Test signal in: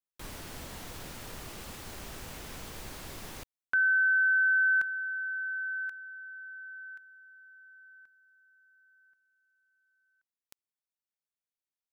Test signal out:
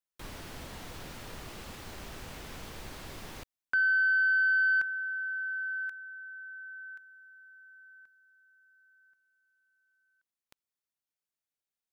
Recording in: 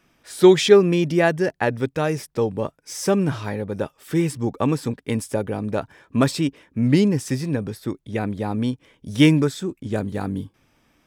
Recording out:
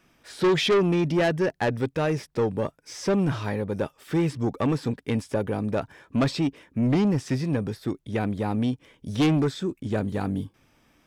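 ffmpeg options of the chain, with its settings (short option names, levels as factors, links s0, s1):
-filter_complex "[0:a]acrossover=split=5400[s0][s1];[s1]acompressor=threshold=0.00251:ratio=4:attack=1:release=60[s2];[s0][s2]amix=inputs=2:normalize=0,aeval=exprs='(tanh(7.08*val(0)+0.05)-tanh(0.05))/7.08':c=same"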